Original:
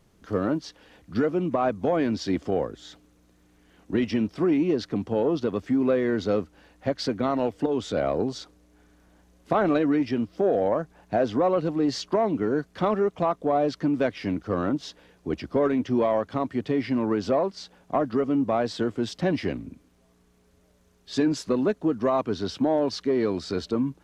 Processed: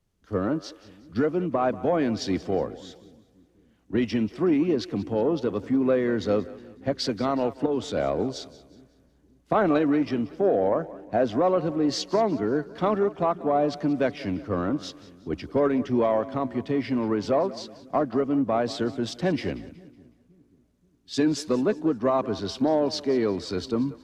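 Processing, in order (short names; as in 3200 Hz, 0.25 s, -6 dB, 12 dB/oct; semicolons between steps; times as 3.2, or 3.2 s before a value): split-band echo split 330 Hz, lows 0.532 s, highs 0.185 s, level -16 dB; three-band expander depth 40%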